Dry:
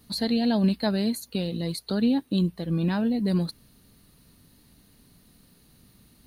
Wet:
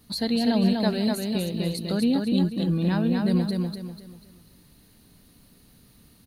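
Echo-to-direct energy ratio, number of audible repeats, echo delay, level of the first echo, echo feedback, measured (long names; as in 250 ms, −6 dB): −3.0 dB, 4, 246 ms, −3.5 dB, 35%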